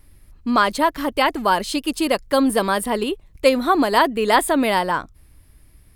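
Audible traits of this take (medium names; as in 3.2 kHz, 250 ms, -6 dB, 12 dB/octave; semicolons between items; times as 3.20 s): noise floor -52 dBFS; spectral tilt -3.5 dB/octave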